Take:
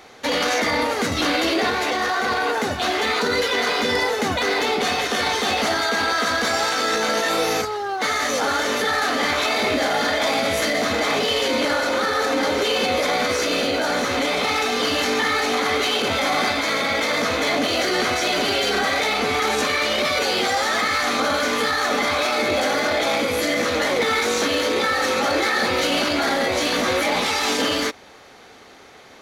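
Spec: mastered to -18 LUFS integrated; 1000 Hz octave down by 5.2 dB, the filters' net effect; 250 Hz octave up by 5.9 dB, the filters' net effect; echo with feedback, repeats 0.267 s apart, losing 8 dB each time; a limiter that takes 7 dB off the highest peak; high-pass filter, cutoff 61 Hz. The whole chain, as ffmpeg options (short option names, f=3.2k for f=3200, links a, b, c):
-af "highpass=61,equalizer=f=250:t=o:g=7.5,equalizer=f=1k:t=o:g=-8,alimiter=limit=-14.5dB:level=0:latency=1,aecho=1:1:267|534|801|1068|1335:0.398|0.159|0.0637|0.0255|0.0102,volume=4dB"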